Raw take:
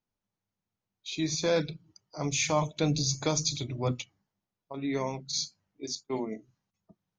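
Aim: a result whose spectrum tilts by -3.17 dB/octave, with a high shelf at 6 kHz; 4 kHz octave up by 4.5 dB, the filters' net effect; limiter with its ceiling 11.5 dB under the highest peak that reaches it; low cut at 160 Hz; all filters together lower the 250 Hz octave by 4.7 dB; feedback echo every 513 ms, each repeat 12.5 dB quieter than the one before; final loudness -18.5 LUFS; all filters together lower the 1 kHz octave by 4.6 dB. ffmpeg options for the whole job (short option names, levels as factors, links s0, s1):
-af "highpass=160,equalizer=f=250:t=o:g=-5,equalizer=f=1000:t=o:g=-5.5,equalizer=f=4000:t=o:g=8.5,highshelf=f=6000:g=-8,alimiter=limit=0.0631:level=0:latency=1,aecho=1:1:513|1026|1539:0.237|0.0569|0.0137,volume=7.08"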